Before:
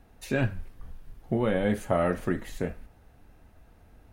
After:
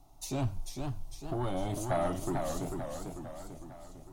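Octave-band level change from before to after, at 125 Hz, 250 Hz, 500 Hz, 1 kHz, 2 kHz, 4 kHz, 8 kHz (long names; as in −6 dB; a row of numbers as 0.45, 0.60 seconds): −3.5, −6.5, −6.5, −1.5, −12.0, −1.0, +6.0 decibels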